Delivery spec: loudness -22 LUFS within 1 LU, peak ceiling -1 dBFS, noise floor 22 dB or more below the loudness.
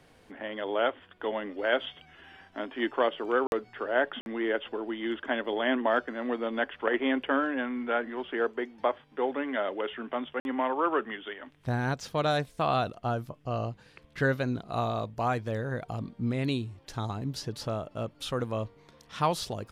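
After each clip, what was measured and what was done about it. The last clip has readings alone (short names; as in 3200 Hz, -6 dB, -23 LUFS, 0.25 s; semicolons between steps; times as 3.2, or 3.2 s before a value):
dropouts 3; longest dropout 51 ms; loudness -31.0 LUFS; peak -11.5 dBFS; loudness target -22.0 LUFS
-> interpolate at 3.47/4.21/10.4, 51 ms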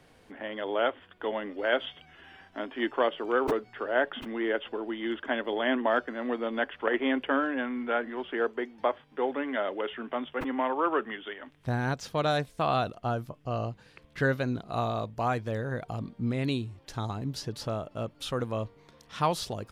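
dropouts 0; loudness -31.0 LUFS; peak -11.5 dBFS; loudness target -22.0 LUFS
-> gain +9 dB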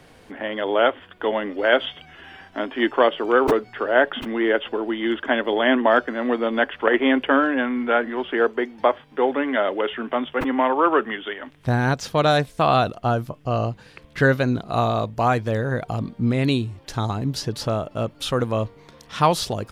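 loudness -22.0 LUFS; peak -2.5 dBFS; noise floor -50 dBFS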